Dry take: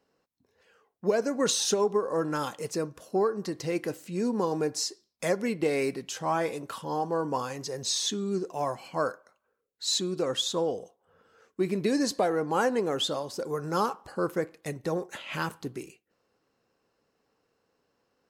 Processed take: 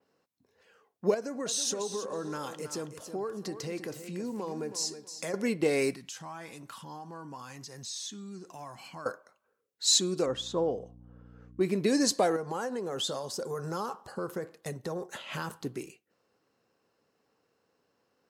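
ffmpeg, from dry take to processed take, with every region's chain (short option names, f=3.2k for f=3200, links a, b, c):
-filter_complex "[0:a]asettb=1/sr,asplit=3[a][b][c];[a]atrim=end=1.144[d];[b]atrim=start=1.14:end=5.34,asetpts=PTS-STARTPTS,afade=t=in:d=0.004:c=qsin,afade=t=out:st=4.196:d=0.004:c=qsin,acompressor=threshold=-36dB:ratio=2.5:attack=3.2:release=140:knee=1:detection=peak,aecho=1:1:322|644|966:0.299|0.0687|0.0158,atrim=end_sample=185220[e];[c]atrim=start=5.336[f];[d][e]acrossfade=d=0.004:c1=hsin:c2=qsin[g];[g][f]acrossfade=d=0.004:c1=qsin:c2=hsin,asettb=1/sr,asplit=3[h][i][j];[h]atrim=end=5.934[k];[i]atrim=start=5.93:end=9.06,asetpts=PTS-STARTPTS,afade=t=in:d=0.004:c=qsin,afade=t=out:st=3.126:d=0.004:c=qsin,equalizer=f=470:t=o:w=0.98:g=-12.5,acompressor=threshold=-43dB:ratio=3:attack=3.2:release=140:knee=1:detection=peak[l];[j]atrim=start=9.056[m];[k][l]acrossfade=d=0.004:c1=hsin:c2=qsin[n];[n][m]acrossfade=d=0.004:c1=qsin:c2=hsin,asettb=1/sr,asplit=3[o][p][q];[o]atrim=end=10.264[r];[p]atrim=start=10.26:end=11.61,asetpts=PTS-STARTPTS,afade=t=in:d=0.004:c=qsin,afade=t=out:st=1.346:d=0.004:c=qsin,lowpass=f=1.2k:p=1,aeval=exprs='val(0)+0.00398*(sin(2*PI*60*n/s)+sin(2*PI*2*60*n/s)/2+sin(2*PI*3*60*n/s)/3+sin(2*PI*4*60*n/s)/4+sin(2*PI*5*60*n/s)/5)':c=same[s];[q]atrim=start=11.606[t];[r][s]acrossfade=d=0.004:c1=hsin:c2=qsin[u];[u][t]acrossfade=d=0.004:c1=qsin:c2=hsin,asettb=1/sr,asplit=3[v][w][x];[v]atrim=end=12.364[y];[w]atrim=start=12.36:end=15.62,asetpts=PTS-STARTPTS,afade=t=in:d=0.004:c=qsin,afade=t=out:st=3.256:d=0.004:c=qsin,equalizer=f=2.3k:w=3.3:g=-6.5,acompressor=threshold=-30dB:ratio=6:attack=3.2:release=140:knee=1:detection=peak,bandreject=f=300:w=6.5[z];[x]atrim=start=15.616[aa];[y][z]acrossfade=d=0.004:c1=hsin:c2=qsin[ab];[ab][aa]acrossfade=d=0.004:c1=qsin:c2=hsin,highpass=80,adynamicequalizer=threshold=0.00562:dfrequency=7500:dqfactor=0.75:tfrequency=7500:tqfactor=0.75:attack=5:release=100:ratio=0.375:range=3.5:mode=boostabove:tftype=bell"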